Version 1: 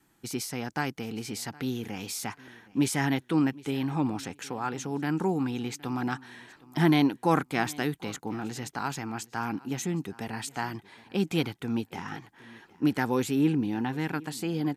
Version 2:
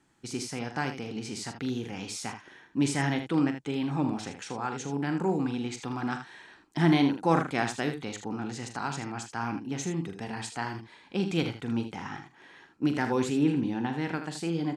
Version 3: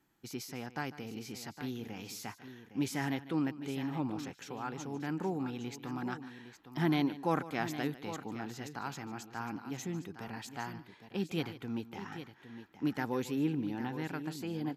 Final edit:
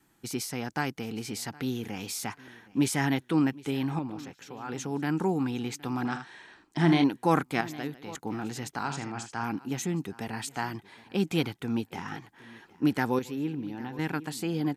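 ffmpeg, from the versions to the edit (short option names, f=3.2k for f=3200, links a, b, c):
-filter_complex "[2:a]asplit=3[a][b][c];[1:a]asplit=2[d][e];[0:a]asplit=6[f][g][h][i][j][k];[f]atrim=end=3.992[l];[a]atrim=start=3.988:end=4.692[m];[g]atrim=start=4.688:end=6.052[n];[d]atrim=start=6.048:end=7.042[o];[h]atrim=start=7.038:end=7.612[p];[b]atrim=start=7.608:end=8.152[q];[i]atrim=start=8.148:end=8.842[r];[e]atrim=start=8.838:end=9.442[s];[j]atrim=start=9.438:end=13.192[t];[c]atrim=start=13.188:end=13.992[u];[k]atrim=start=13.988[v];[l][m]acrossfade=d=0.004:c1=hsin:c2=hsin[w];[w][n]acrossfade=d=0.004:c1=hsin:c2=hsin[x];[x][o]acrossfade=d=0.004:c1=hsin:c2=hsin[y];[y][p]acrossfade=d=0.004:c1=hsin:c2=hsin[z];[z][q]acrossfade=d=0.004:c1=hsin:c2=hsin[aa];[aa][r]acrossfade=d=0.004:c1=hsin:c2=hsin[ab];[ab][s]acrossfade=d=0.004:c1=hsin:c2=hsin[ac];[ac][t]acrossfade=d=0.004:c1=hsin:c2=hsin[ad];[ad][u]acrossfade=d=0.004:c1=hsin:c2=hsin[ae];[ae][v]acrossfade=d=0.004:c1=hsin:c2=hsin"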